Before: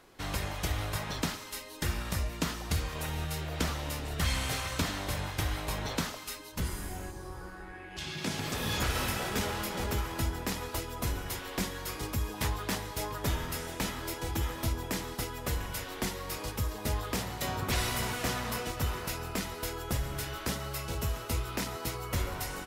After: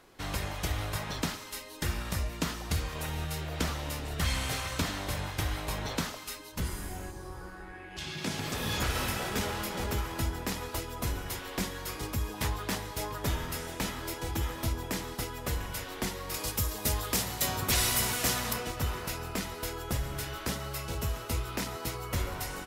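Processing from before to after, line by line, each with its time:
0:16.34–0:18.53: high-shelf EQ 4,200 Hz +11 dB

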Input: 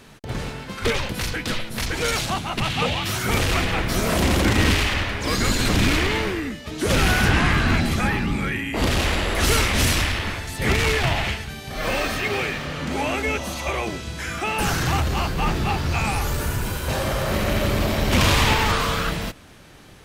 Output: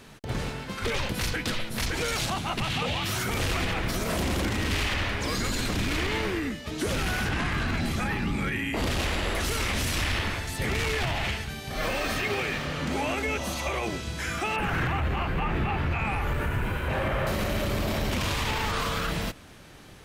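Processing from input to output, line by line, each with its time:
0:14.56–0:17.27: high shelf with overshoot 3,500 Hz −13.5 dB, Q 1.5
whole clip: brickwall limiter −17.5 dBFS; level −2 dB

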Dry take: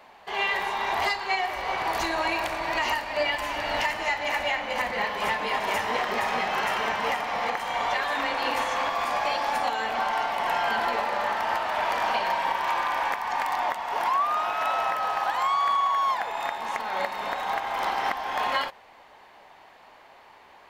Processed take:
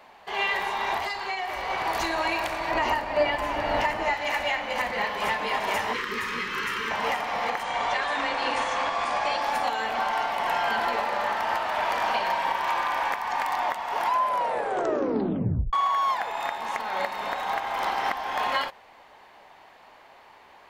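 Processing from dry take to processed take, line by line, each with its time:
0:00.97–0:01.70: downward compressor, threshold −26 dBFS
0:02.71–0:04.14: tilt shelving filter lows +6 dB, about 1,500 Hz
0:05.93–0:06.91: Chebyshev band-stop filter 410–1,200 Hz
0:07.63–0:09.42: Butterworth low-pass 9,800 Hz 72 dB per octave
0:14.04: tape stop 1.69 s

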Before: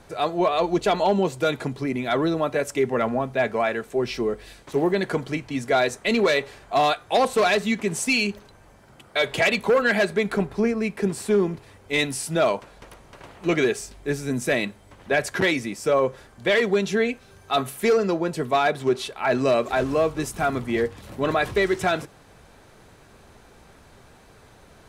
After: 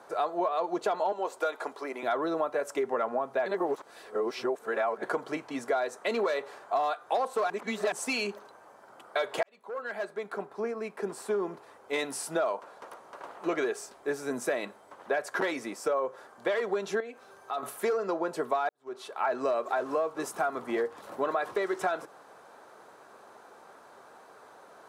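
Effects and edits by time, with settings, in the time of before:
0:01.12–0:02.03: high-pass filter 460 Hz
0:03.46–0:05.03: reverse
0:07.50–0:07.92: reverse
0:09.43–0:12.13: fade in
0:17.00–0:17.63: downward compressor 2.5 to 1, threshold −37 dBFS
0:18.69–0:19.21: fade in quadratic
whole clip: high-pass filter 470 Hz 12 dB per octave; high shelf with overshoot 1,700 Hz −8 dB, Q 1.5; downward compressor 6 to 1, threshold −28 dBFS; level +2 dB

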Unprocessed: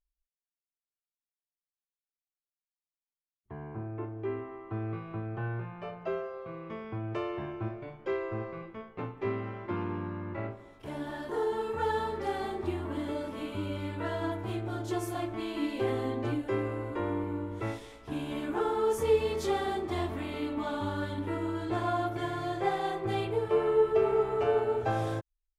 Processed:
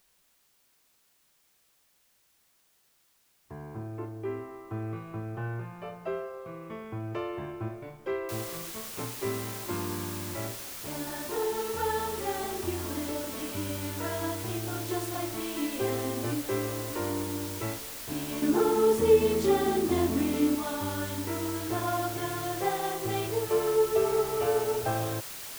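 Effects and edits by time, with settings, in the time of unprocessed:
0:08.29: noise floor change −68 dB −41 dB
0:18.42–0:20.55: parametric band 240 Hz +12.5 dB 1.4 octaves

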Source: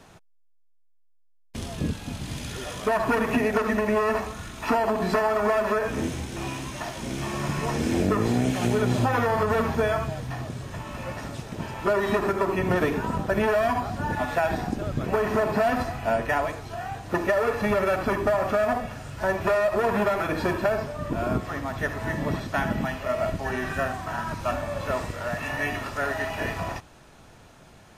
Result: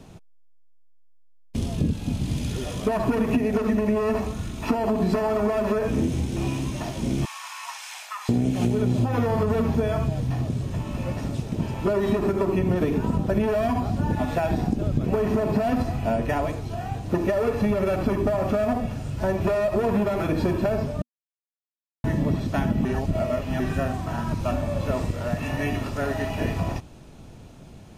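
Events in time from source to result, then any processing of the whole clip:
0:07.25–0:08.29: Butterworth high-pass 890 Hz 48 dB per octave
0:21.02–0:22.04: silence
0:22.85–0:23.60: reverse
whole clip: drawn EQ curve 240 Hz 0 dB, 1,700 Hz −15 dB, 2,500 Hz −9 dB; downward compressor, threshold −27 dBFS; level +8.5 dB

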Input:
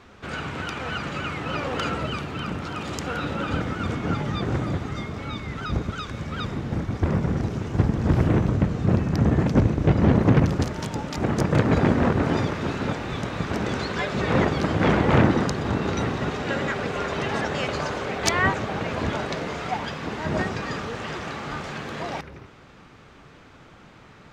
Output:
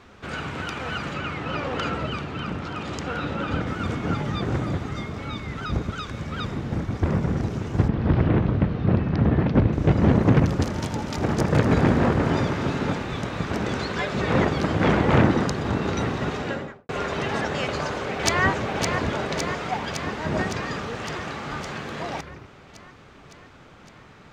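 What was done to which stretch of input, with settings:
0:01.14–0:03.67: high-frequency loss of the air 57 metres
0:07.88–0:09.73: low-pass filter 4,100 Hz 24 dB per octave
0:10.42–0:13.03: echo machine with several playback heads 81 ms, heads all three, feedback 68%, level −16 dB
0:16.37–0:16.89: fade out and dull
0:17.63–0:18.42: delay throw 560 ms, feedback 70%, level −5 dB

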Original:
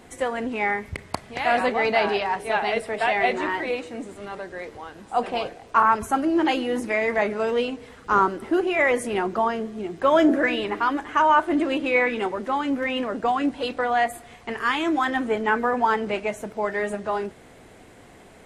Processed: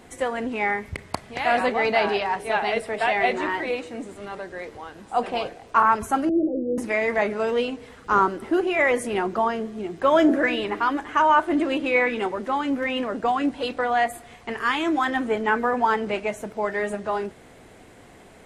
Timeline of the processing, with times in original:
0:06.29–0:06.78: Butterworth low-pass 640 Hz 96 dB per octave

